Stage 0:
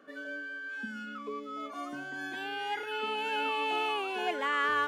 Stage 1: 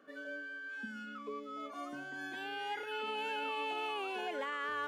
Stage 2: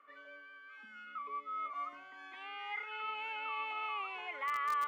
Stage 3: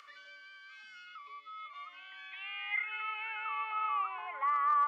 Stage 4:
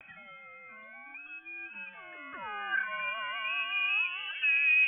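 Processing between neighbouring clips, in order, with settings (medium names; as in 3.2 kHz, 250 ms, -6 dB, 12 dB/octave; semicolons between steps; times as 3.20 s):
dynamic bell 540 Hz, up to +5 dB, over -53 dBFS, Q 5; peak limiter -25 dBFS, peak gain reduction 6.5 dB; trim -4.5 dB
two resonant band-passes 1.6 kHz, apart 0.76 oct; in parallel at -11.5 dB: bit crusher 6-bit; on the sum: trim +8.5 dB
band-pass sweep 5 kHz -> 970 Hz, 1.02–4.51 s; upward compressor, threshold -52 dBFS; trim +8.5 dB
vibrato 0.45 Hz 37 cents; frequency inversion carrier 3.7 kHz; trim +3.5 dB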